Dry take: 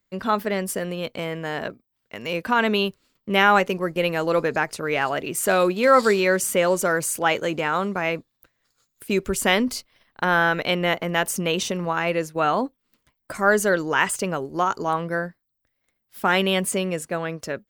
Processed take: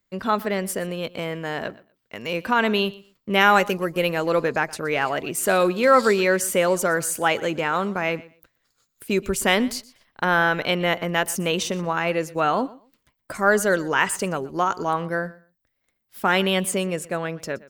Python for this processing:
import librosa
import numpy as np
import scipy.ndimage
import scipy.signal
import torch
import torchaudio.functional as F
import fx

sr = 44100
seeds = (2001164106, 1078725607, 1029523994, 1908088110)

y = fx.high_shelf(x, sr, hz=fx.line((3.4, 4600.0), (4.09, 9400.0)), db=8.5, at=(3.4, 4.09), fade=0.02)
y = fx.echo_feedback(y, sr, ms=121, feedback_pct=19, wet_db=-20.5)